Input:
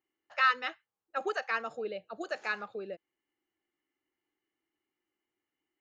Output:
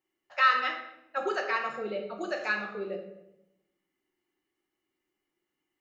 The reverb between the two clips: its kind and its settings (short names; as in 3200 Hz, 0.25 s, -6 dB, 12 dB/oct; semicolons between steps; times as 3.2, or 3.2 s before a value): shoebox room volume 280 m³, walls mixed, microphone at 1 m; gain +1 dB